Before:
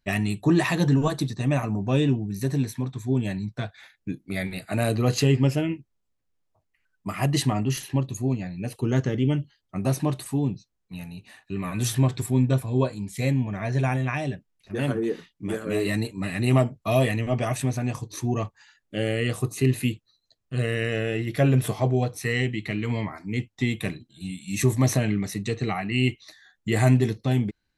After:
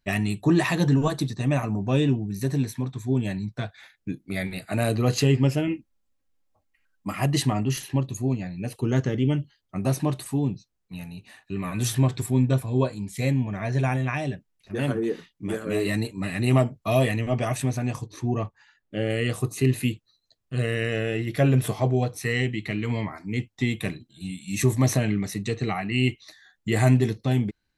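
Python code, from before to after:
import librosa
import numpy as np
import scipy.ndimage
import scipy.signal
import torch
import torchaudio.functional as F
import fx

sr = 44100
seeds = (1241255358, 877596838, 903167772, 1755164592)

y = fx.comb(x, sr, ms=3.7, depth=0.65, at=(5.67, 7.16))
y = fx.lowpass(y, sr, hz=2300.0, slope=6, at=(18.06, 19.1))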